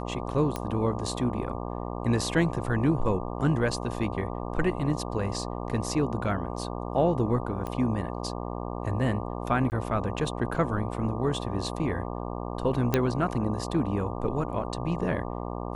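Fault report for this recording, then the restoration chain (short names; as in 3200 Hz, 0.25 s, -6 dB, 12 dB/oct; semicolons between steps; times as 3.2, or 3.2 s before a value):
buzz 60 Hz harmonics 20 -34 dBFS
0.56 pop -16 dBFS
7.67 pop -21 dBFS
9.7–9.72 gap 19 ms
12.94 pop -9 dBFS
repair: de-click; de-hum 60 Hz, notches 20; interpolate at 9.7, 19 ms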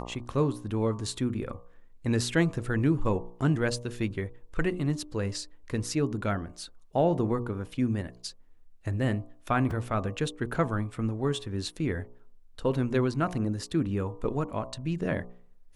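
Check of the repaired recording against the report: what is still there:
7.67 pop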